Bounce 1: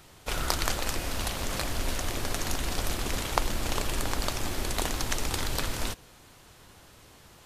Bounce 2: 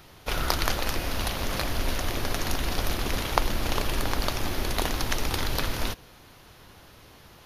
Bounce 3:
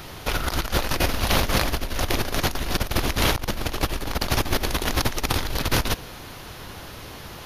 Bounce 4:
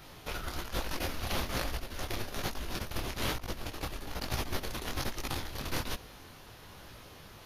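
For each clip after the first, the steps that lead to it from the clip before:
bell 7900 Hz -14.5 dB 0.34 oct; gain +3 dB
negative-ratio compressor -30 dBFS, ratio -0.5; gain +7.5 dB
detuned doubles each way 40 cents; gain -8.5 dB

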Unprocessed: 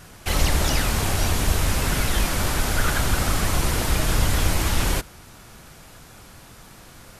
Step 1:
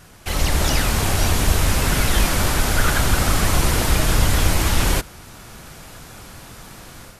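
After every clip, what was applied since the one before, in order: AGC gain up to 7.5 dB; gain -1.5 dB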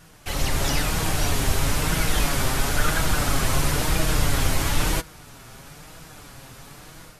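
flange 1 Hz, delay 6.1 ms, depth 1.6 ms, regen +40%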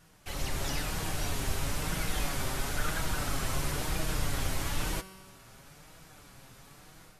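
resonator 190 Hz, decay 1.7 s, mix 70%

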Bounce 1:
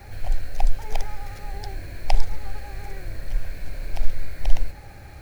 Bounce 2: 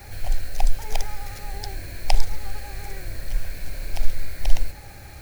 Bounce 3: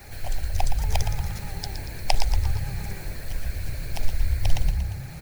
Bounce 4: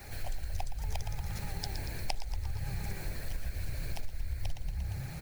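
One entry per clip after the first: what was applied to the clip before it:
high shelf 3600 Hz +9.5 dB
frequency-shifting echo 0.117 s, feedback 52%, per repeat +31 Hz, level -8 dB; harmonic-percussive split harmonic -8 dB; gain +2 dB
compressor 6:1, threshold -27 dBFS, peak gain reduction 16 dB; gain -3 dB

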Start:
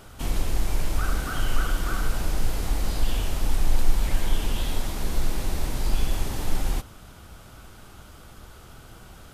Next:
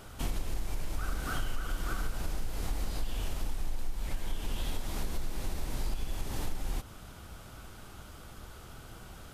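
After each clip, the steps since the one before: compressor 6:1, threshold -26 dBFS, peak gain reduction 15 dB; gain -2 dB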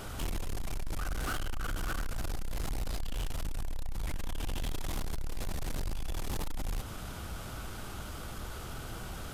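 in parallel at -3 dB: limiter -28.5 dBFS, peak gain reduction 7 dB; on the sum: soft clip -33 dBFS, distortion -9 dB; gain +3 dB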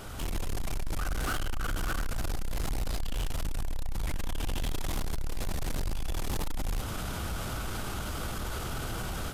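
AGC gain up to 12 dB; limiter -26 dBFS, peak gain reduction 8 dB; gain -1 dB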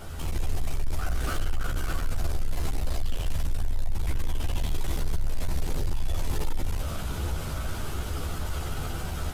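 chorus voices 6, 0.32 Hz, delay 13 ms, depth 1.6 ms; in parallel at -11.5 dB: sample-and-hold 24×; on the sum: gain +2.5 dB

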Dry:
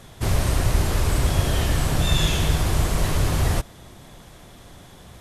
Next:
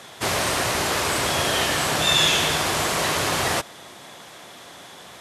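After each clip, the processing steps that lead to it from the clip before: weighting filter A; gain +7 dB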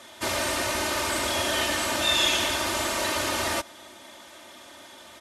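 comb 3.3 ms, depth 88%; gain -6.5 dB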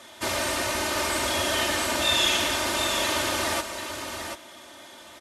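echo 0.738 s -7.5 dB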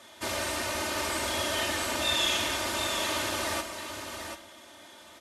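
reverb RT60 0.65 s, pre-delay 8 ms, DRR 9.5 dB; gain -5 dB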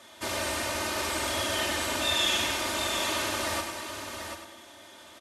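feedback echo 0.1 s, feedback 40%, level -8 dB

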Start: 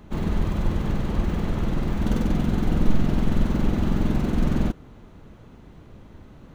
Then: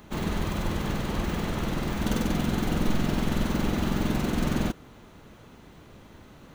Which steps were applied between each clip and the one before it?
tilt +2 dB/oct; gain +1.5 dB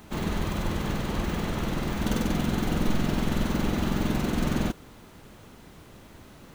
added noise pink -57 dBFS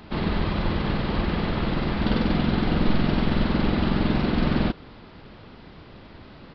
downsampling 11025 Hz; gain +4 dB

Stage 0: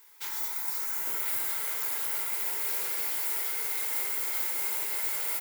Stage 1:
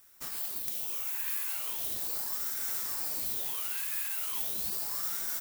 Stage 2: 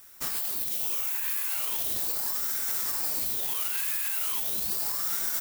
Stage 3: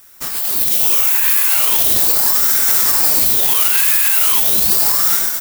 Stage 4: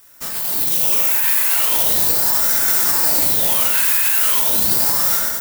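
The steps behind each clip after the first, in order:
HPF 1400 Hz 24 dB/oct; wrapped overs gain 16 dB; ring modulator with a swept carrier 2000 Hz, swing 80%, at 0.38 Hz
limiter -25.5 dBFS, peak gain reduction 8 dB; gain +8 dB
AGC gain up to 10 dB; gain +6.5 dB
reverb RT60 1.2 s, pre-delay 4 ms, DRR 0 dB; gain -4 dB

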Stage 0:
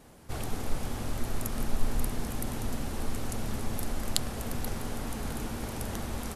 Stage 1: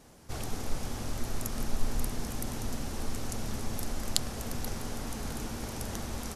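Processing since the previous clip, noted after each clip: bell 5800 Hz +6 dB 0.81 oct; gain -2 dB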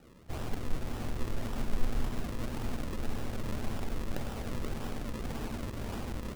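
median filter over 5 samples; decimation with a swept rate 40×, swing 100% 1.8 Hz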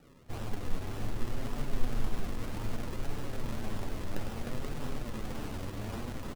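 flange 0.63 Hz, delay 6.7 ms, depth 4.3 ms, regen +41%; echo 0.306 s -6.5 dB; gain +2.5 dB

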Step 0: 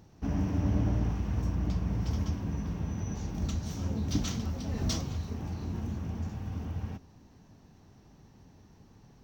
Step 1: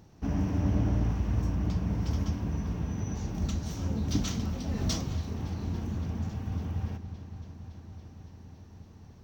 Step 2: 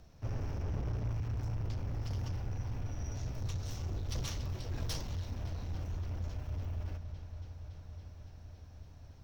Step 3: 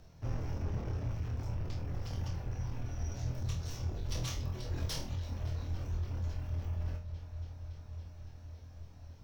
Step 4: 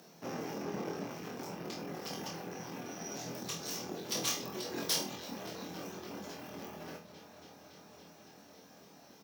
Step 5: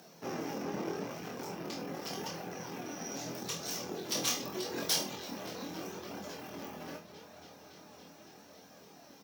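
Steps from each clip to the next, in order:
dark delay 0.281 s, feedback 82%, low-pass 3300 Hz, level -15 dB; gain +1 dB
soft clip -31 dBFS, distortion -9 dB; frequency shift -170 Hz; gain -1.5 dB
reverb removal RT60 0.54 s; on a send: flutter echo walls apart 4.2 m, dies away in 0.34 s
elliptic high-pass 180 Hz, stop band 80 dB; high shelf 8100 Hz +10.5 dB; doubler 22 ms -8.5 dB; gain +6.5 dB
flange 0.81 Hz, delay 1.2 ms, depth 2.9 ms, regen +67%; gain +6 dB

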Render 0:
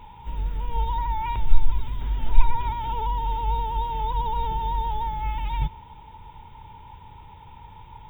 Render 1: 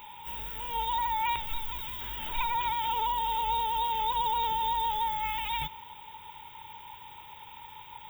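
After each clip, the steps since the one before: tilt +4.5 dB/oct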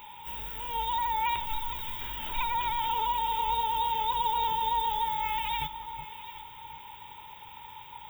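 echo with dull and thin repeats by turns 0.371 s, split 1300 Hz, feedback 53%, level -8 dB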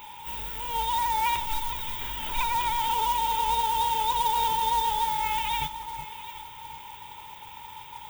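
modulation noise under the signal 14 dB; gain +3 dB

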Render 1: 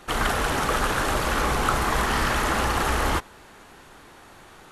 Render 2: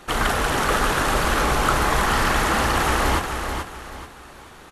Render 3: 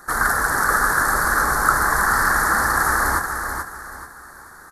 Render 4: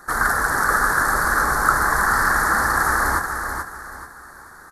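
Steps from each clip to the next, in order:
feedback echo 0.433 s, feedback 32%, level -6.5 dB; gain +2.5 dB
EQ curve 610 Hz 0 dB, 1700 Hz +14 dB, 2800 Hz -26 dB, 4300 Hz +3 dB, 7100 Hz +7 dB, 11000 Hz +14 dB; gain -5.5 dB
high shelf 7200 Hz -4 dB

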